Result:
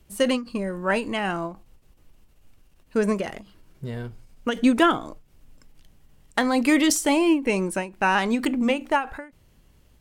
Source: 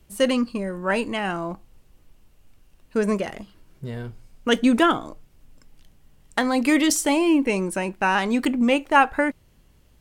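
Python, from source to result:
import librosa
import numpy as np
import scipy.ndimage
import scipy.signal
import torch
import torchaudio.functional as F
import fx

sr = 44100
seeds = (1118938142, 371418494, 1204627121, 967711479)

y = fx.hum_notches(x, sr, base_hz=60, count=5, at=(8.4, 8.94), fade=0.02)
y = fx.end_taper(y, sr, db_per_s=170.0)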